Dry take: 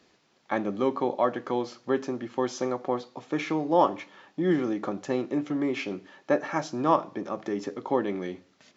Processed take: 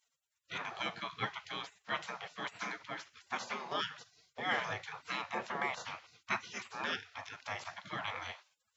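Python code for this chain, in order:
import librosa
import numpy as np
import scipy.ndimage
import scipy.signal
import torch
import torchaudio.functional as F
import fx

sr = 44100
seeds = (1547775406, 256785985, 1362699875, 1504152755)

y = fx.spec_gate(x, sr, threshold_db=-25, keep='weak')
y = scipy.signal.sosfilt(scipy.signal.butter(2, 99.0, 'highpass', fs=sr, output='sos'), y)
y = fx.high_shelf(y, sr, hz=4700.0, db=-11.5)
y = y * 10.0 ** (10.5 / 20.0)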